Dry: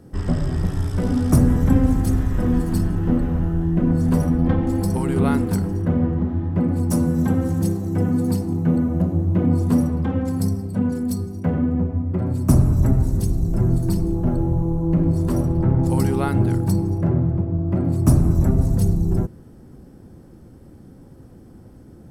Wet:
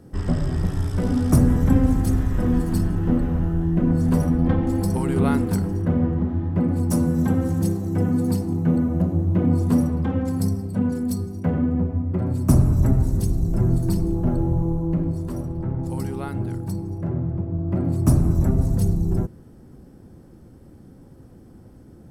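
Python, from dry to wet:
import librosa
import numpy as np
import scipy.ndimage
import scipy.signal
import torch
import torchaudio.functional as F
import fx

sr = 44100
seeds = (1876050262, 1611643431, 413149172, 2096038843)

y = fx.gain(x, sr, db=fx.line((14.7, -1.0), (15.3, -8.5), (16.8, -8.5), (17.78, -2.0)))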